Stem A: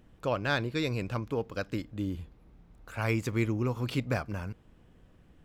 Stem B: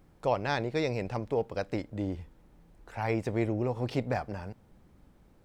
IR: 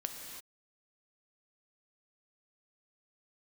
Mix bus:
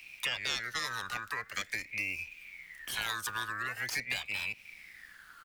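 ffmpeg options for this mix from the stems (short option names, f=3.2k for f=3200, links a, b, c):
-filter_complex "[0:a]aeval=exprs='val(0)*sin(2*PI*1900*n/s+1900*0.3/0.45*sin(2*PI*0.45*n/s))':c=same,volume=-1dB[a];[1:a]volume=-1,adelay=9.5,volume=-14dB[b];[a][b]amix=inputs=2:normalize=0,acrossover=split=140|990[c][d][e];[c]acompressor=threshold=-54dB:ratio=4[f];[d]acompressor=threshold=-50dB:ratio=4[g];[e]acompressor=threshold=-45dB:ratio=4[h];[f][g][h]amix=inputs=3:normalize=0,crystalizer=i=9:c=0"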